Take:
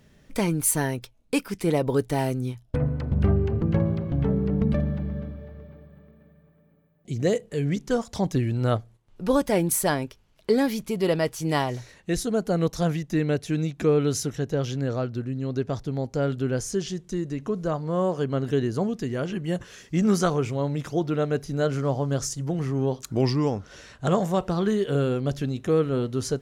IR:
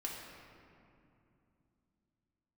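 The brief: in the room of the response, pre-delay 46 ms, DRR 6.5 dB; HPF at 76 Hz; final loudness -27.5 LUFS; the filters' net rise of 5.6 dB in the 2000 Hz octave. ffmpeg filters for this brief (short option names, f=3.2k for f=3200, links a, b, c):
-filter_complex "[0:a]highpass=76,equalizer=f=2k:t=o:g=7,asplit=2[a][b];[1:a]atrim=start_sample=2205,adelay=46[c];[b][c]afir=irnorm=-1:irlink=0,volume=-7dB[d];[a][d]amix=inputs=2:normalize=0,volume=-2.5dB"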